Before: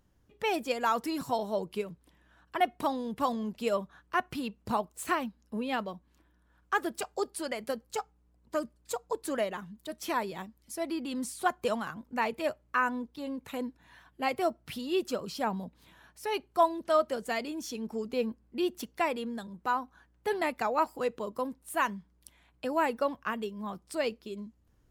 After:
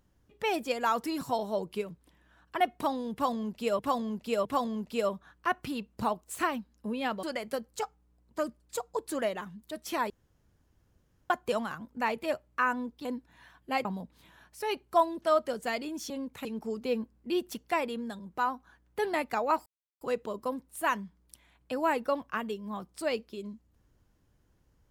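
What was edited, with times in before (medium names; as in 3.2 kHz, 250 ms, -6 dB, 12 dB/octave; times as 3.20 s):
3.13–3.79 s: loop, 3 plays
5.91–7.39 s: delete
10.26–11.46 s: room tone
13.21–13.56 s: move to 17.73 s
14.36–15.48 s: delete
20.94 s: insert silence 0.35 s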